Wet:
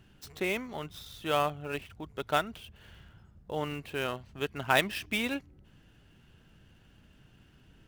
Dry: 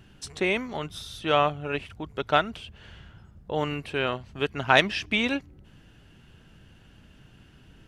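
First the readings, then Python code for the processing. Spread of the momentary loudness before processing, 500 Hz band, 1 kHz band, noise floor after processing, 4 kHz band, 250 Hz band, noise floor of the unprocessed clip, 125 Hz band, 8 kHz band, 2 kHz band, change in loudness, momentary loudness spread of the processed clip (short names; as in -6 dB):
15 LU, -6.0 dB, -6.0 dB, -61 dBFS, -6.5 dB, -6.0 dB, -55 dBFS, -6.0 dB, -1.0 dB, -6.5 dB, -6.0 dB, 15 LU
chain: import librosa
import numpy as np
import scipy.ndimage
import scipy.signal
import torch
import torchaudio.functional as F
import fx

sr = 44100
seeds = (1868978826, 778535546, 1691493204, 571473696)

y = fx.dead_time(x, sr, dead_ms=0.054)
y = y * librosa.db_to_amplitude(-6.0)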